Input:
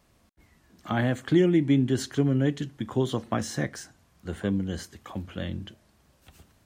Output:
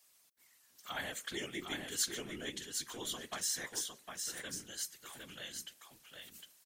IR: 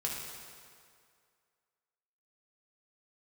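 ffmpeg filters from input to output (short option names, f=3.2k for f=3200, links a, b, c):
-filter_complex "[0:a]aderivative,bandreject=f=174.3:t=h:w=4,bandreject=f=348.6:t=h:w=4,bandreject=f=522.9:t=h:w=4,afftfilt=real='hypot(re,im)*cos(2*PI*random(0))':imag='hypot(re,im)*sin(2*PI*random(1))':win_size=512:overlap=0.75,asplit=2[a][b];[b]aecho=0:1:758:0.562[c];[a][c]amix=inputs=2:normalize=0,volume=10.5dB"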